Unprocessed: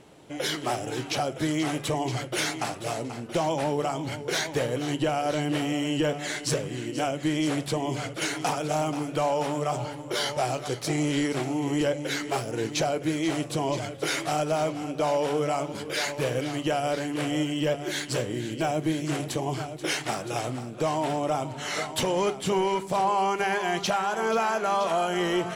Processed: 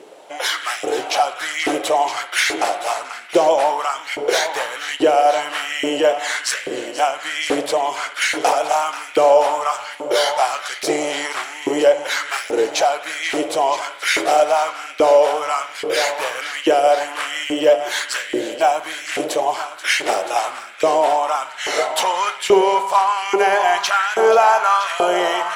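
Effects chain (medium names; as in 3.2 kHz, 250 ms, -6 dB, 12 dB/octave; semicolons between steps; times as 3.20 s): spring tank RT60 2.2 s, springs 56 ms, chirp 35 ms, DRR 10 dB; LFO high-pass saw up 1.2 Hz 380–2100 Hz; trim +7.5 dB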